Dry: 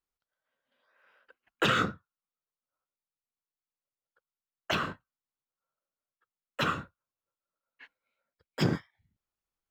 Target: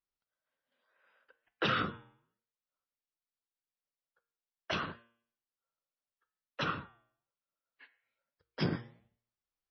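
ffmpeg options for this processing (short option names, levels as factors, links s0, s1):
-af "flanger=delay=6.1:depth=5.7:regen=-89:speed=1.2:shape=sinusoidal,bandreject=f=116.7:t=h:w=4,bandreject=f=233.4:t=h:w=4,bandreject=f=350.1:t=h:w=4,bandreject=f=466.8:t=h:w=4,bandreject=f=583.5:t=h:w=4,bandreject=f=700.2:t=h:w=4,bandreject=f=816.9:t=h:w=4,bandreject=f=933.6:t=h:w=4,bandreject=f=1050.3:t=h:w=4,bandreject=f=1167:t=h:w=4,bandreject=f=1283.7:t=h:w=4,bandreject=f=1400.4:t=h:w=4,bandreject=f=1517.1:t=h:w=4,bandreject=f=1633.8:t=h:w=4,bandreject=f=1750.5:t=h:w=4,bandreject=f=1867.2:t=h:w=4,bandreject=f=1983.9:t=h:w=4,bandreject=f=2100.6:t=h:w=4,bandreject=f=2217.3:t=h:w=4,bandreject=f=2334:t=h:w=4,bandreject=f=2450.7:t=h:w=4,bandreject=f=2567.4:t=h:w=4,bandreject=f=2684.1:t=h:w=4,bandreject=f=2800.8:t=h:w=4,bandreject=f=2917.5:t=h:w=4,bandreject=f=3034.2:t=h:w=4,bandreject=f=3150.9:t=h:w=4,bandreject=f=3267.6:t=h:w=4,bandreject=f=3384.3:t=h:w=4,bandreject=f=3501:t=h:w=4,bandreject=f=3617.7:t=h:w=4" -ar 24000 -c:a libmp3lame -b:a 24k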